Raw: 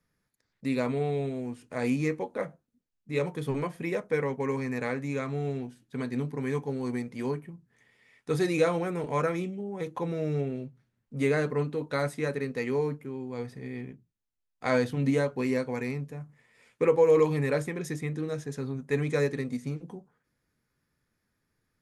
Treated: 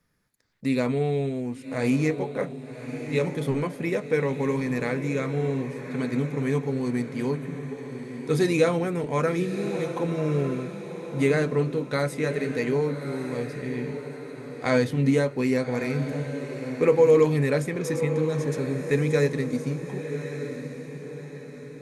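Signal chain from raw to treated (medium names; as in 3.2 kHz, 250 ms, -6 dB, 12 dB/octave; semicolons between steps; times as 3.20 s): dynamic bell 990 Hz, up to -4 dB, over -42 dBFS, Q 0.85; echo that smears into a reverb 1162 ms, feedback 45%, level -9 dB; trim +5 dB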